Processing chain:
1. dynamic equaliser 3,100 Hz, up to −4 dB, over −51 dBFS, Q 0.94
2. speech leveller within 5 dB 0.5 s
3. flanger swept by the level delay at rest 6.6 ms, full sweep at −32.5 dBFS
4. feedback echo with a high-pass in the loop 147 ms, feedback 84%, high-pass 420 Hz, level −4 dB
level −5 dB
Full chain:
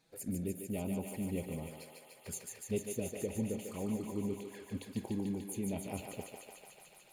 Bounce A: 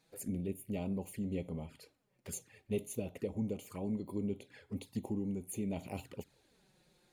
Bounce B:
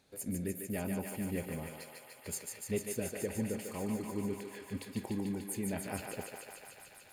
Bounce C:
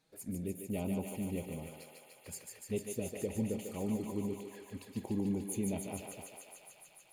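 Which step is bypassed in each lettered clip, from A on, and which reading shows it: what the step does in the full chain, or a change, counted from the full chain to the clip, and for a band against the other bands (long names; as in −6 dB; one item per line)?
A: 4, echo-to-direct ratio 0.0 dB to none audible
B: 3, 2 kHz band +4.5 dB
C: 2, change in momentary loudness spread +2 LU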